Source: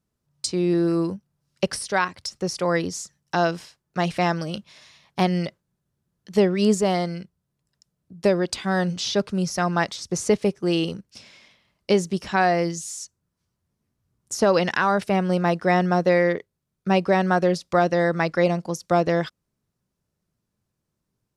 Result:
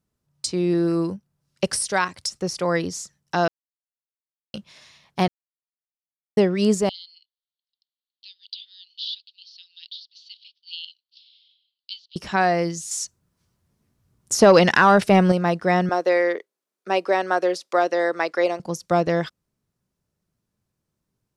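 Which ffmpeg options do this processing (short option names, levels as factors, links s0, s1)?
-filter_complex "[0:a]asettb=1/sr,asplit=3[s0][s1][s2];[s0]atrim=end=1.644[s3];[s1]atrim=start=1.64:end=2.4,asetpts=PTS-STARTPTS,afade=t=in:d=0.004:c=qsin,afade=t=out:st=0.756:d=0.004:c=qsin,equalizer=f=8700:t=o:w=1.2:g=8[s4];[s2]atrim=start=2.396[s5];[s3][s4]acrossfade=d=0.004:c1=hsin:c2=qsin[s6];[s6][s5]acrossfade=d=0.004:c1=qsin:c2=hsin,asettb=1/sr,asplit=3[s7][s8][s9];[s7]atrim=end=6.894[s10];[s8]atrim=start=6.89:end=12.16,asetpts=PTS-STARTPTS,afade=t=in:d=0.004:c=qsin,afade=t=out:st=5.266:d=0.004:c=qsin,asuperpass=centerf=3700:order=8:qfactor=2.2[s11];[s9]atrim=start=12.156[s12];[s10][s11]acrossfade=d=0.004:c1=hsin:c2=qsin[s13];[s13][s12]acrossfade=d=0.004:c1=qsin:c2=hsin,asettb=1/sr,asplit=3[s14][s15][s16];[s14]atrim=end=12.914[s17];[s15]atrim=start=12.91:end=15.32,asetpts=PTS-STARTPTS,afade=t=in:d=0.004:c=qsin,afade=t=out:st=2.406:d=0.004:c=qsin,acontrast=80[s18];[s16]atrim=start=15.316[s19];[s17][s18]acrossfade=d=0.004:c1=hsin:c2=qsin[s20];[s20][s19]acrossfade=d=0.004:c1=qsin:c2=hsin,asettb=1/sr,asplit=3[s21][s22][s23];[s21]atrim=end=15.894[s24];[s22]atrim=start=15.89:end=18.6,asetpts=PTS-STARTPTS,afade=t=in:d=0.004:c=qsin,afade=t=out:st=2.706:d=0.004:c=qsin,highpass=f=320:w=0.5412,highpass=f=320:w=1.3066[s25];[s23]atrim=start=18.596[s26];[s24][s25]acrossfade=d=0.004:c1=hsin:c2=qsin[s27];[s27][s26]acrossfade=d=0.004:c1=qsin:c2=hsin,asplit=5[s28][s29][s30][s31][s32];[s28]atrim=end=3.48,asetpts=PTS-STARTPTS,afade=t=out:st=3.476:d=0.004:c=hsin[s33];[s29]atrim=start=3.48:end=4.54,asetpts=PTS-STARTPTS,volume=0[s34];[s30]atrim=start=4.54:end=5.28,asetpts=PTS-STARTPTS,afade=t=in:d=0.004:c=hsin,afade=t=out:st=0.736:d=0.004:c=hsin[s35];[s31]atrim=start=5.28:end=6.37,asetpts=PTS-STARTPTS,volume=0[s36];[s32]atrim=start=6.37,asetpts=PTS-STARTPTS,afade=t=in:d=0.004:c=hsin[s37];[s33][s34][s35][s36][s37]concat=n=5:v=0:a=1"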